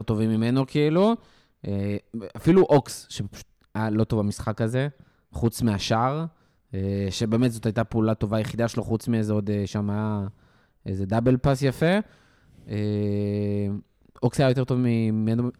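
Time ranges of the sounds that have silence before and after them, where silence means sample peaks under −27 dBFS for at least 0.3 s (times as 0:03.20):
0:01.65–0:03.26
0:03.75–0:04.89
0:05.36–0:06.26
0:06.74–0:10.28
0:10.86–0:12.01
0:12.71–0:13.77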